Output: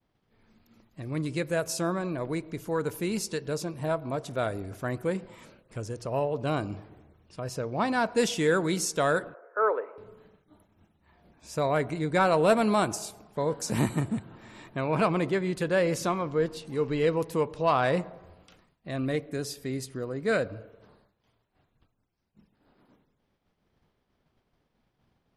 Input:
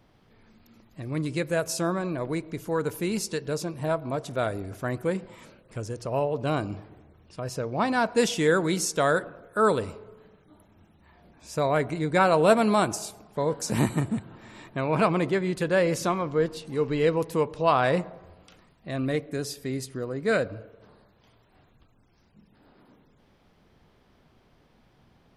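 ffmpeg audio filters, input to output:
-filter_complex "[0:a]agate=range=-33dB:threshold=-52dB:ratio=3:detection=peak,acontrast=72,asettb=1/sr,asplit=3[a][b][c];[a]atrim=end=9.344[d];[b]atrim=start=9.34:end=9.98,asetpts=PTS-STARTPTS,afade=t=in:d=0.004:c=qsin,afade=t=out:st=0.636:d=0.004:c=qsin,asuperpass=centerf=880:order=8:qfactor=0.57[e];[c]atrim=start=9.976[f];[d][e]acrossfade=d=0.004:c1=hsin:c2=qsin[g];[g][f]acrossfade=d=0.004:c1=qsin:c2=hsin,volume=-8.5dB"

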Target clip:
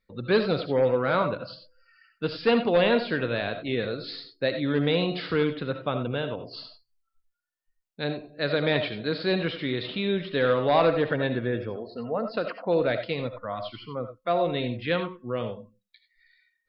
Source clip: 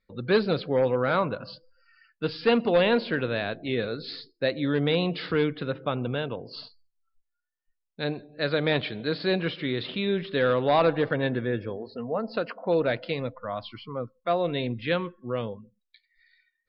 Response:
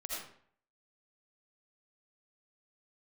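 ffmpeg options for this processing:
-filter_complex "[0:a]asplit=2[a][b];[1:a]atrim=start_sample=2205,atrim=end_sample=4410[c];[b][c]afir=irnorm=-1:irlink=0,volume=-1.5dB[d];[a][d]amix=inputs=2:normalize=0,volume=-3.5dB"

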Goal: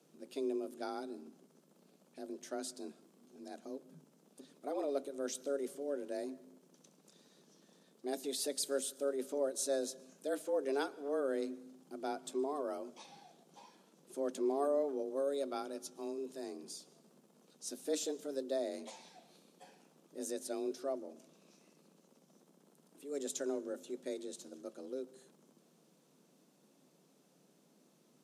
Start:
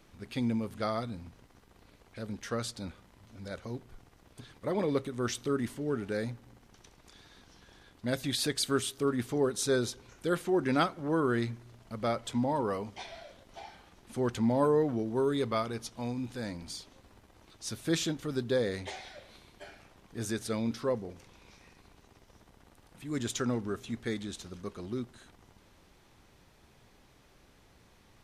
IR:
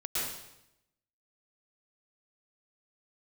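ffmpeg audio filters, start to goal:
-filter_complex "[0:a]afreqshift=140,equalizer=f=125:t=o:w=1:g=-8,equalizer=f=1k:t=o:w=1:g=-6,equalizer=f=2k:t=o:w=1:g=-11,equalizer=f=4k:t=o:w=1:g=-4,equalizer=f=8k:t=o:w=1:g=3,asplit=2[a][b];[1:a]atrim=start_sample=2205,adelay=7[c];[b][c]afir=irnorm=-1:irlink=0,volume=-28dB[d];[a][d]amix=inputs=2:normalize=0,volume=-4.5dB"

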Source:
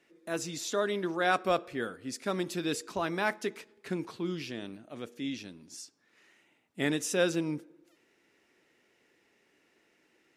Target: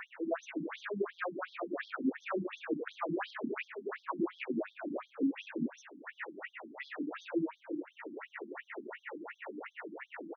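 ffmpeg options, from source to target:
-filter_complex "[0:a]asplit=2[a][b];[b]highpass=f=720:p=1,volume=26dB,asoftclip=type=tanh:threshold=-12dB[c];[a][c]amix=inputs=2:normalize=0,lowpass=f=1.4k:p=1,volume=-6dB,asplit=2[d][e];[e]acompressor=mode=upward:threshold=-31dB:ratio=2.5,volume=1dB[f];[d][f]amix=inputs=2:normalize=0,alimiter=limit=-18.5dB:level=0:latency=1:release=140,asuperstop=centerf=4800:order=4:qfactor=0.51,aemphasis=mode=production:type=cd,asoftclip=type=tanh:threshold=-20.5dB,acrossover=split=150|3000[g][h][i];[h]acompressor=threshold=-32dB:ratio=6[j];[g][j][i]amix=inputs=3:normalize=0,aecho=1:1:30|67.5|114.4|173|246.2:0.631|0.398|0.251|0.158|0.1,afftfilt=real='re*between(b*sr/1024,230*pow(4600/230,0.5+0.5*sin(2*PI*2.8*pts/sr))/1.41,230*pow(4600/230,0.5+0.5*sin(2*PI*2.8*pts/sr))*1.41)':imag='im*between(b*sr/1024,230*pow(4600/230,0.5+0.5*sin(2*PI*2.8*pts/sr))/1.41,230*pow(4600/230,0.5+0.5*sin(2*PI*2.8*pts/sr))*1.41)':win_size=1024:overlap=0.75,volume=2dB"

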